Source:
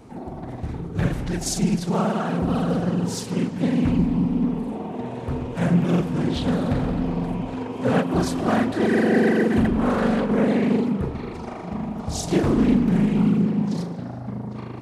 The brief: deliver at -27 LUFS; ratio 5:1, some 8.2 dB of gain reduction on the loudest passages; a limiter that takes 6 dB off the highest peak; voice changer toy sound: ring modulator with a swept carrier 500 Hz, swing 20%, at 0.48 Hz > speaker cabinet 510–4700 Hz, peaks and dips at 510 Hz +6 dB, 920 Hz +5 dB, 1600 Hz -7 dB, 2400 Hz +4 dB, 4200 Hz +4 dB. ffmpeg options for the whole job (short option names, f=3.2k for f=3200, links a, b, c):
-af "acompressor=threshold=-24dB:ratio=5,alimiter=limit=-20dB:level=0:latency=1,aeval=exprs='val(0)*sin(2*PI*500*n/s+500*0.2/0.48*sin(2*PI*0.48*n/s))':c=same,highpass=510,equalizer=f=510:t=q:w=4:g=6,equalizer=f=920:t=q:w=4:g=5,equalizer=f=1.6k:t=q:w=4:g=-7,equalizer=f=2.4k:t=q:w=4:g=4,equalizer=f=4.2k:t=q:w=4:g=4,lowpass=f=4.7k:w=0.5412,lowpass=f=4.7k:w=1.3066,volume=6dB"